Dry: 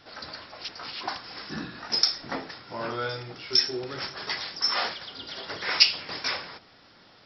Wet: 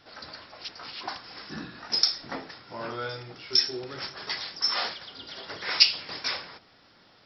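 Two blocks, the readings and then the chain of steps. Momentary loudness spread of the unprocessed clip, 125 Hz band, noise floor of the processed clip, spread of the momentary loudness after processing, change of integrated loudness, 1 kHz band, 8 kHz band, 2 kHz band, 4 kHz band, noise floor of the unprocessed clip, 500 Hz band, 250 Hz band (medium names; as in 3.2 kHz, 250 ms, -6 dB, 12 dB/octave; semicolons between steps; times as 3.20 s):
17 LU, -3.0 dB, -59 dBFS, 19 LU, +0.5 dB, -3.0 dB, no reading, -2.5 dB, -0.5 dB, -56 dBFS, -3.0 dB, -3.0 dB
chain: dynamic bell 4.2 kHz, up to +4 dB, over -36 dBFS, Q 1.5; trim -3 dB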